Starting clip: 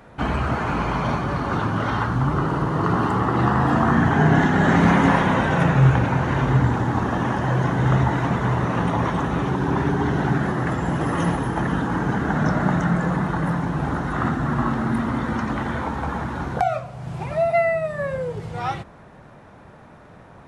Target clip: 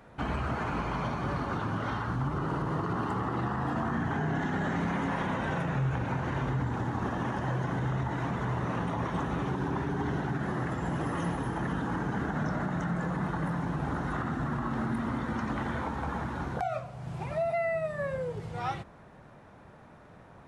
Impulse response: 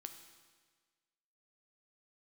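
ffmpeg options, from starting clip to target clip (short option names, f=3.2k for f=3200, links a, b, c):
-af "alimiter=limit=-15.5dB:level=0:latency=1:release=101,volume=-7dB"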